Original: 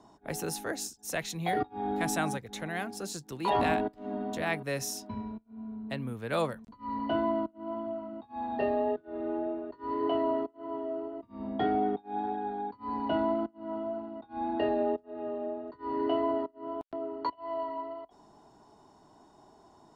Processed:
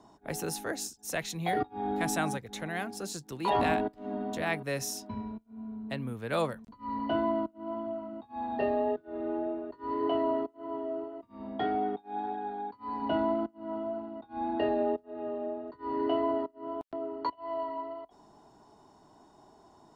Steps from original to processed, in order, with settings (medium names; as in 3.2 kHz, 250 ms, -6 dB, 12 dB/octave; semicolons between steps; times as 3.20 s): 11.04–13.02 s: bass shelf 390 Hz -6 dB